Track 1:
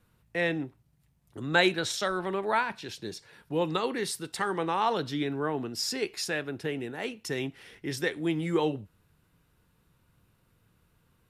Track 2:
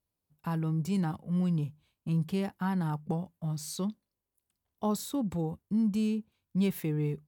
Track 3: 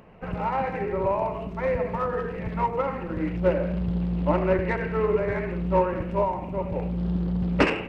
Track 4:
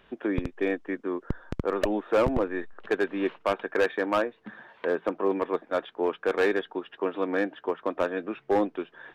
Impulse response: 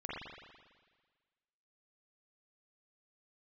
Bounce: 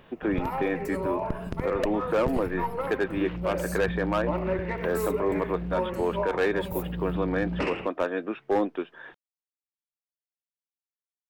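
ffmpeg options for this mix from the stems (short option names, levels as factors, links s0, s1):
-filter_complex "[1:a]aemphasis=mode=production:type=75fm,volume=0.2[s0];[2:a]bandreject=f=1600:w=12,volume=0.562[s1];[3:a]volume=1.19[s2];[s0][s1][s2]amix=inputs=3:normalize=0,alimiter=limit=0.133:level=0:latency=1:release=20"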